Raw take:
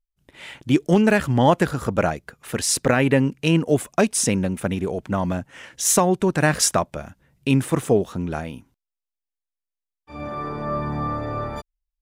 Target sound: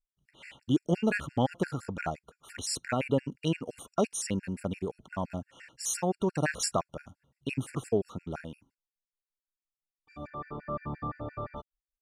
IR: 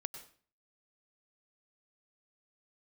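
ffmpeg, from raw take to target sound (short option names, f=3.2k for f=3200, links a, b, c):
-af "asetnsamples=n=441:p=0,asendcmd='10.27 lowpass f 2900',lowpass=9.7k,afftfilt=real='re*gt(sin(2*PI*5.8*pts/sr)*(1-2*mod(floor(b*sr/1024/1400),2)),0)':imag='im*gt(sin(2*PI*5.8*pts/sr)*(1-2*mod(floor(b*sr/1024/1400),2)),0)':win_size=1024:overlap=0.75,volume=-8dB"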